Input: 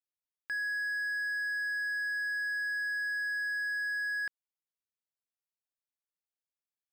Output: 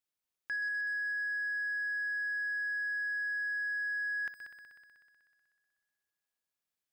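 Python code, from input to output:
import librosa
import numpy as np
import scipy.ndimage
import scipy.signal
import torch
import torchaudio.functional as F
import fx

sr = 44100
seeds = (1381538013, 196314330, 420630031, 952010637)

y = fx.echo_heads(x, sr, ms=62, heads='all three', feedback_pct=67, wet_db=-15.5)
y = 10.0 ** (-35.0 / 20.0) * np.tanh(y / 10.0 ** (-35.0 / 20.0))
y = F.gain(torch.from_numpy(y), 3.5).numpy()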